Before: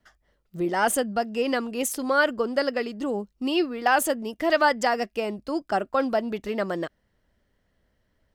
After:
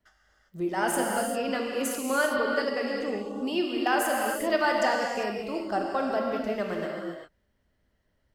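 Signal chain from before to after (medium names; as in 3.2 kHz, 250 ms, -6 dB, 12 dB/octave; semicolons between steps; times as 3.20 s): gated-style reverb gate 420 ms flat, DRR -1 dB; trim -6 dB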